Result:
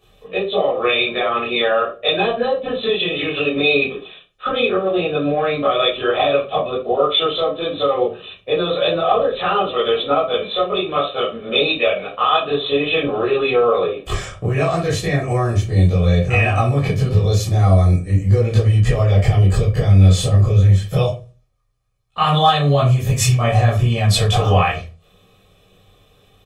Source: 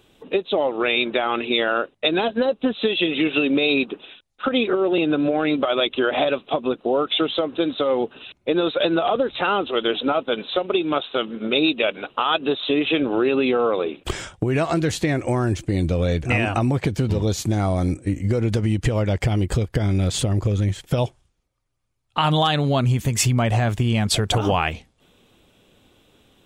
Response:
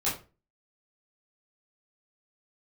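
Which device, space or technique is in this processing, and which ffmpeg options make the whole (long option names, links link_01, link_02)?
microphone above a desk: -filter_complex "[0:a]aecho=1:1:1.7:0.63[link_01];[1:a]atrim=start_sample=2205[link_02];[link_01][link_02]afir=irnorm=-1:irlink=0,volume=-6dB"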